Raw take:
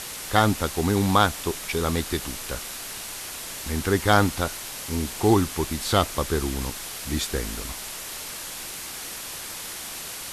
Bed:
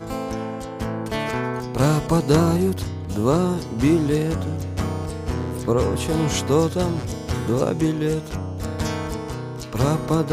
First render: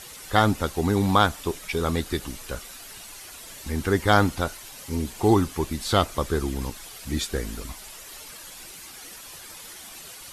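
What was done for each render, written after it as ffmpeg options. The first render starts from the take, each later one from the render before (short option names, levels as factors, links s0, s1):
-af "afftdn=nr=10:nf=-36"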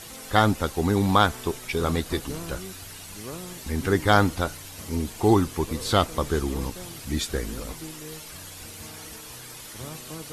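-filter_complex "[1:a]volume=0.106[s0];[0:a][s0]amix=inputs=2:normalize=0"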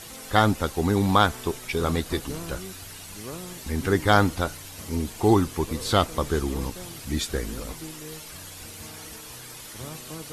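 -af anull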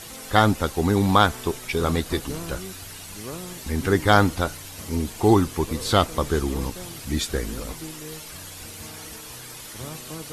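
-af "volume=1.26"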